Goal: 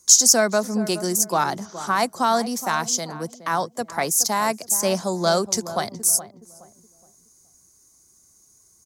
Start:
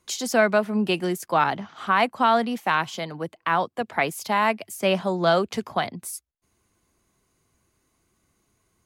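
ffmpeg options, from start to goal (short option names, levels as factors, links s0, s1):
-filter_complex "[0:a]highshelf=f=4200:t=q:w=3:g=13.5,asplit=2[s0][s1];[s1]adelay=420,lowpass=f=1000:p=1,volume=0.251,asplit=2[s2][s3];[s3]adelay=420,lowpass=f=1000:p=1,volume=0.35,asplit=2[s4][s5];[s5]adelay=420,lowpass=f=1000:p=1,volume=0.35,asplit=2[s6][s7];[s7]adelay=420,lowpass=f=1000:p=1,volume=0.35[s8];[s0][s2][s4][s6][s8]amix=inputs=5:normalize=0"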